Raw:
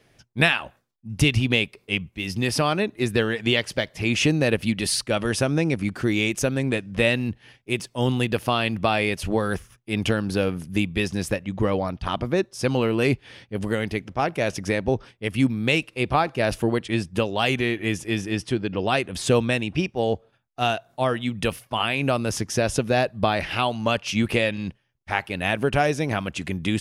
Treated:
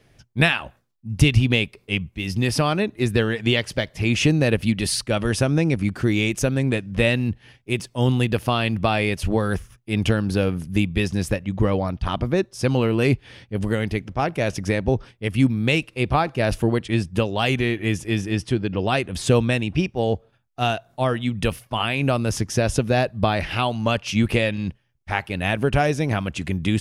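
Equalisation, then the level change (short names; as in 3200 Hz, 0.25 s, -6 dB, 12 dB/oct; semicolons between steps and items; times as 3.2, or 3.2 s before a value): low shelf 140 Hz +9 dB; 0.0 dB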